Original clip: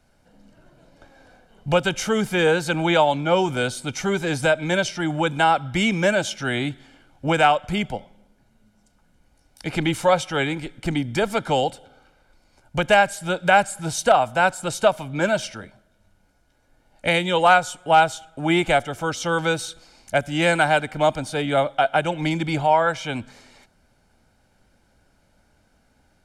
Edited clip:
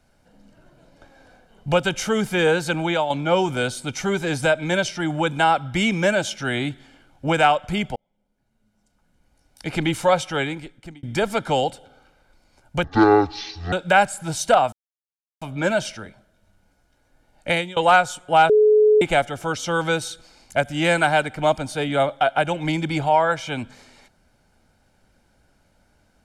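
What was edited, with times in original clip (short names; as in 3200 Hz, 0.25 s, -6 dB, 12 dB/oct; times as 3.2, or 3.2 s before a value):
2.7–3.1 fade out, to -7.5 dB
7.96–9.73 fade in
10.32–11.03 fade out
12.84–13.3 speed 52%
14.3–14.99 mute
17.08–17.34 fade out, to -22 dB
18.07–18.59 bleep 426 Hz -11 dBFS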